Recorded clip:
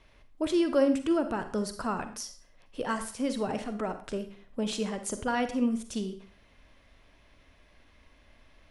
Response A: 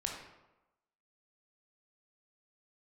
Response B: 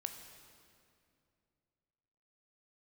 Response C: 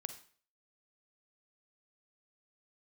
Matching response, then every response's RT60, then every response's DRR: C; 1.0, 2.5, 0.45 s; -0.5, 6.0, 9.0 dB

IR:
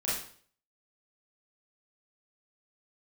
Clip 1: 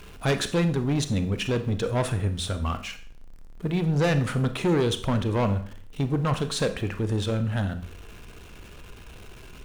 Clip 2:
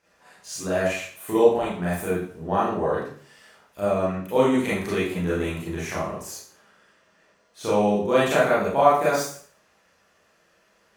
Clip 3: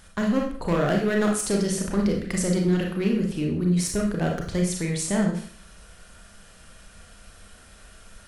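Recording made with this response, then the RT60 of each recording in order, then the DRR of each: 2; 0.50, 0.50, 0.50 s; 9.0, -9.0, 0.0 dB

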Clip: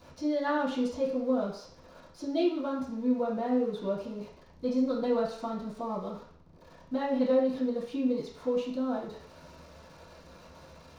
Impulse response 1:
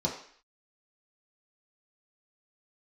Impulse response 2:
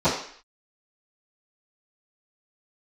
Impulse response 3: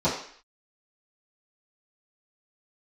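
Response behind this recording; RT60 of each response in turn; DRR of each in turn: 3; 0.55, 0.55, 0.55 s; -4.0, -21.0, -13.5 dB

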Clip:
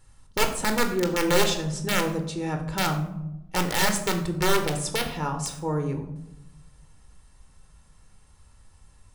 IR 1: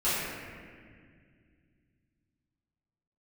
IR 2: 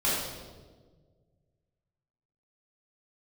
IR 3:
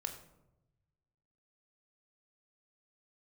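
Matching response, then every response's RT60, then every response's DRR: 3; 2.0, 1.5, 0.95 s; -14.0, -10.0, 5.0 dB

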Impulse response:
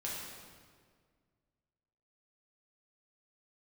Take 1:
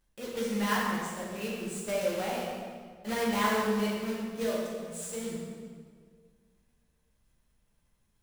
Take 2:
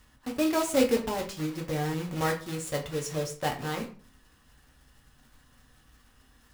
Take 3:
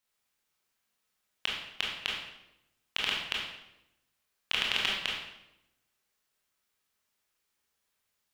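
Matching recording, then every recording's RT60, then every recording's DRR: 1; 1.8, 0.45, 0.90 s; -6.0, 1.0, -4.0 dB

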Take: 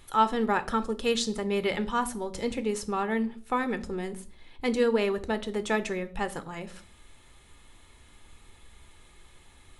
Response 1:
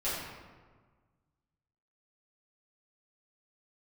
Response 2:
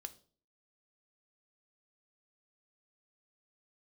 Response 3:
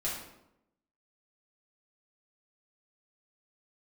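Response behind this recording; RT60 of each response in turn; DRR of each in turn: 2; 1.5, 0.45, 0.85 s; -13.0, 10.0, -6.5 dB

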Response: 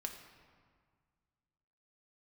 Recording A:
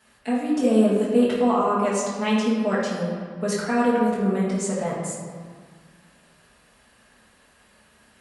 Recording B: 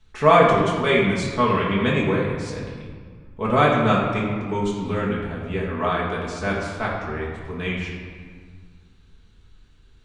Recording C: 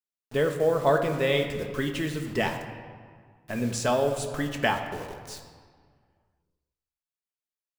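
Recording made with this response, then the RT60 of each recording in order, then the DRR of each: C; 1.8, 1.8, 1.8 s; -10.5, -6.0, 3.0 dB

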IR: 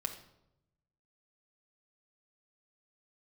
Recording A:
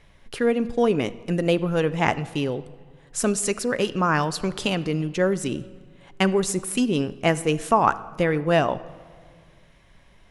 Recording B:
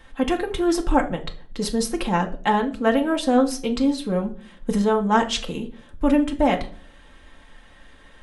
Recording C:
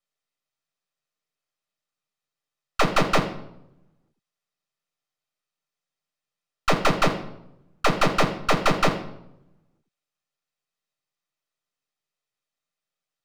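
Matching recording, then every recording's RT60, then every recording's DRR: C; 2.0, 0.45, 0.85 s; 14.0, 1.0, 3.5 dB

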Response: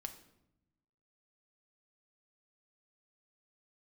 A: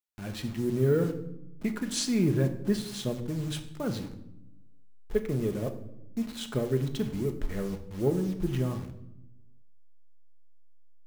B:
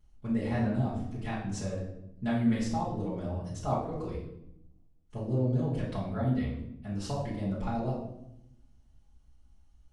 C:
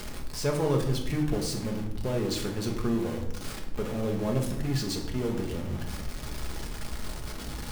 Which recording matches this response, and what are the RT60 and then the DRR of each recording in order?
A; 0.85, 0.80, 0.80 s; 6.0, -10.0, 0.0 dB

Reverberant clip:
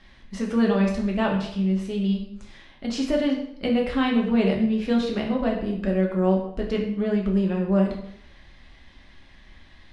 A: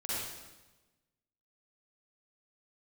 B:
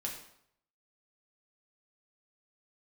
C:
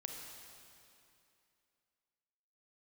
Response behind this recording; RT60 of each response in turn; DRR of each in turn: B; 1.1, 0.70, 2.7 s; -9.5, -1.0, 1.5 dB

